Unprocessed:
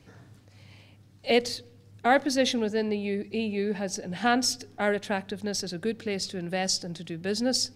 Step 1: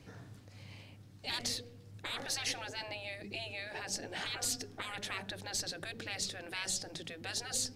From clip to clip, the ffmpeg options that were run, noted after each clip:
ffmpeg -i in.wav -af "afftfilt=real='re*lt(hypot(re,im),0.0708)':imag='im*lt(hypot(re,im),0.0708)':win_size=1024:overlap=0.75" out.wav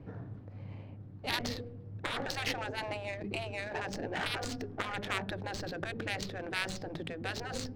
ffmpeg -i in.wav -af "adynamicsmooth=sensitivity=5:basefreq=980,volume=8dB" out.wav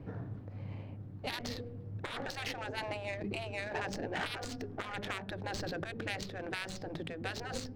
ffmpeg -i in.wav -af "alimiter=level_in=3dB:limit=-24dB:level=0:latency=1:release=450,volume=-3dB,volume=2dB" out.wav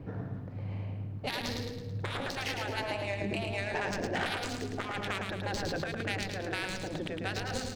ffmpeg -i in.wav -af "aecho=1:1:109|218|327|436|545|654:0.596|0.274|0.126|0.058|0.0267|0.0123,volume=3dB" out.wav

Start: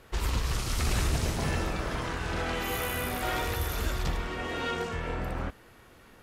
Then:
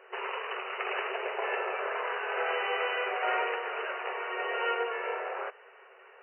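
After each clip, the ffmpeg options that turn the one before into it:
ffmpeg -i in.wav -af "afftfilt=real='re*between(b*sr/4096,370,3000)':imag='im*between(b*sr/4096,370,3000)':win_size=4096:overlap=0.75,volume=3dB" out.wav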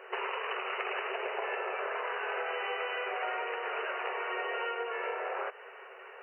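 ffmpeg -i in.wav -af "acompressor=threshold=-37dB:ratio=10,volume=5.5dB" out.wav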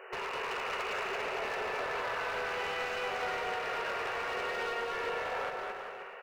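ffmpeg -i in.wav -filter_complex "[0:a]volume=34dB,asoftclip=hard,volume=-34dB,asplit=2[link_01][link_02];[link_02]aecho=0:1:220|396|536.8|649.4|739.6:0.631|0.398|0.251|0.158|0.1[link_03];[link_01][link_03]amix=inputs=2:normalize=0" out.wav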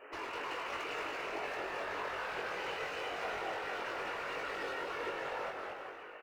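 ffmpeg -i in.wav -filter_complex "[0:a]afftfilt=real='hypot(re,im)*cos(2*PI*random(0))':imag='hypot(re,im)*sin(2*PI*random(1))':win_size=512:overlap=0.75,asplit=2[link_01][link_02];[link_02]adelay=21,volume=-3dB[link_03];[link_01][link_03]amix=inputs=2:normalize=0" out.wav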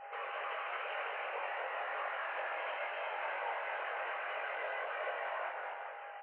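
ffmpeg -i in.wav -af "highpass=frequency=230:width_type=q:width=0.5412,highpass=frequency=230:width_type=q:width=1.307,lowpass=frequency=2600:width_type=q:width=0.5176,lowpass=frequency=2600:width_type=q:width=0.7071,lowpass=frequency=2600:width_type=q:width=1.932,afreqshift=140,aeval=exprs='val(0)+0.00398*sin(2*PI*810*n/s)':channel_layout=same" out.wav

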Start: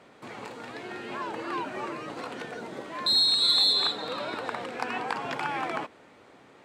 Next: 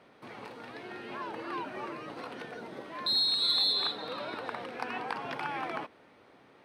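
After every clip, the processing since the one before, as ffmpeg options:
ffmpeg -i in.wav -af "equalizer=frequency=7300:width_type=o:width=0.29:gain=-14.5,volume=-4.5dB" out.wav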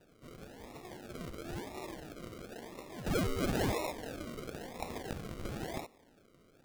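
ffmpeg -i in.wav -af "acrusher=samples=40:mix=1:aa=0.000001:lfo=1:lforange=24:lforate=0.98,volume=-4.5dB" out.wav

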